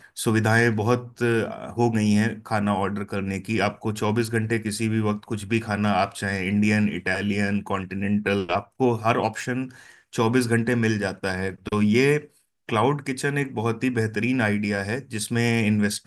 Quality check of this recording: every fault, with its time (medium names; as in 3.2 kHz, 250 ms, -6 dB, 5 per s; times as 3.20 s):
9.41 s: dropout 2.4 ms